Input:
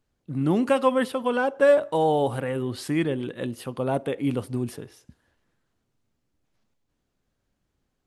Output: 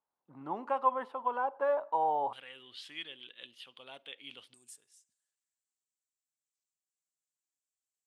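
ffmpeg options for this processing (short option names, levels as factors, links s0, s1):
-af "asetnsamples=n=441:p=0,asendcmd='2.33 bandpass f 3200;4.54 bandpass f 7800',bandpass=f=930:t=q:w=4.6:csg=0,volume=1.12"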